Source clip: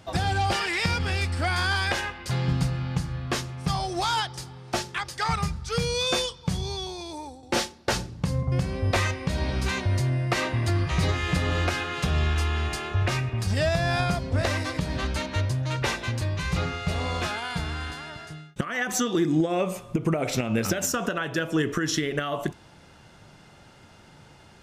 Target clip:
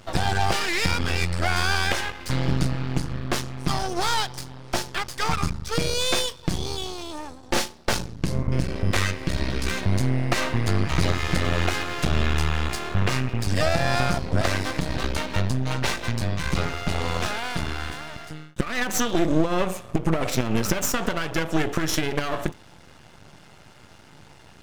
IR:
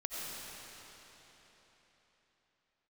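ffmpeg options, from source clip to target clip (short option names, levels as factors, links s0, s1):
-filter_complex "[0:a]asettb=1/sr,asplit=3[s0][s1][s2];[s0]atrim=end=8.164[s3];[s1]atrim=start=8.16:end=9.82,asetpts=PTS-STARTPTS,afade=t=in:d=0.004:c=qsin,afade=t=out:st=1.656:d=0.004:c=qsin,equalizer=f=770:t=o:w=0.56:g=-10.5[s4];[s2]atrim=start=9.816[s5];[s3][s4]acrossfade=d=0.004:c1=hsin:c2=qsin[s6];[s6][s5]acrossfade=d=0.004:c1=qsin:c2=hsin,aeval=exprs='max(val(0),0)':c=same,volume=2"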